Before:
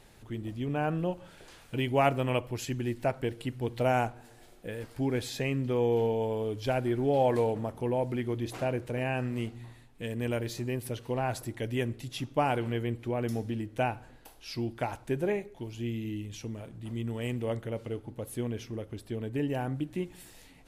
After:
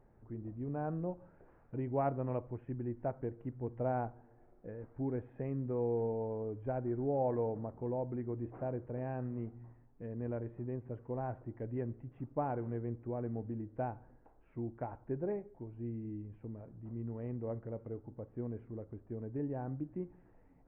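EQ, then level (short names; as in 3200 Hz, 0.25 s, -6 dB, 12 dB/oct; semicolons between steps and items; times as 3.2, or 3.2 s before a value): Gaussian blur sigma 6.5 samples; -6.5 dB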